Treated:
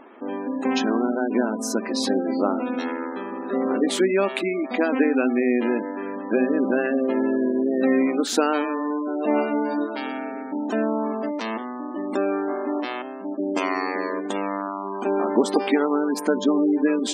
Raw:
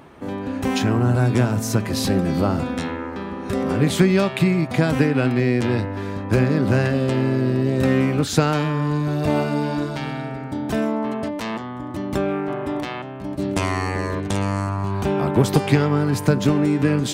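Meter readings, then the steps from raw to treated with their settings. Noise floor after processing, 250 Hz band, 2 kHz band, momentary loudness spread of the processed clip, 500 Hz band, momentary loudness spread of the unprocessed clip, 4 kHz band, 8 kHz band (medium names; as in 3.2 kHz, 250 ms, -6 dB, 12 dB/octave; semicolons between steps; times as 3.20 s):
-33 dBFS, -1.5 dB, -2.0 dB, 9 LU, 0.0 dB, 10 LU, -2.5 dB, -2.5 dB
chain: spectral gate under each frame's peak -25 dB strong; brick-wall FIR high-pass 210 Hz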